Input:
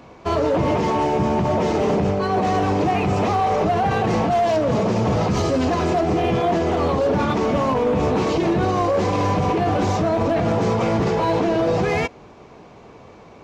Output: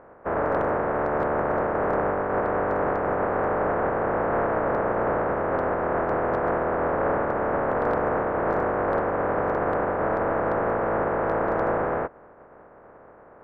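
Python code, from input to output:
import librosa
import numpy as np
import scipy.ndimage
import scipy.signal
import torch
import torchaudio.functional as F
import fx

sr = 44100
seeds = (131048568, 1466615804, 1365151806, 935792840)

y = fx.spec_flatten(x, sr, power=0.11)
y = scipy.signal.sosfilt(scipy.signal.butter(6, 1600.0, 'lowpass', fs=sr, output='sos'), y)
y = fx.peak_eq(y, sr, hz=530.0, db=10.5, octaves=1.3)
y = np.clip(y, -10.0 ** (-11.5 / 20.0), 10.0 ** (-11.5 / 20.0))
y = y * 10.0 ** (-3.0 / 20.0)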